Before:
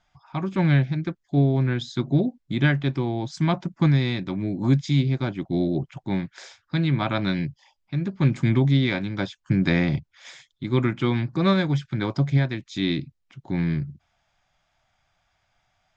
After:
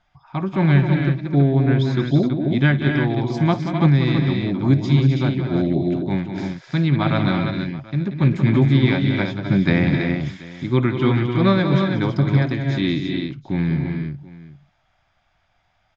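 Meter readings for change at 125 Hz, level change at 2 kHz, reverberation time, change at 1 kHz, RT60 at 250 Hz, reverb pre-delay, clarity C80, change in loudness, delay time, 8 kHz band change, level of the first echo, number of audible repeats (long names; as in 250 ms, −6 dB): +5.0 dB, +4.5 dB, no reverb audible, +5.0 dB, no reverb audible, no reverb audible, no reverb audible, +4.5 dB, 55 ms, can't be measured, −19.0 dB, 5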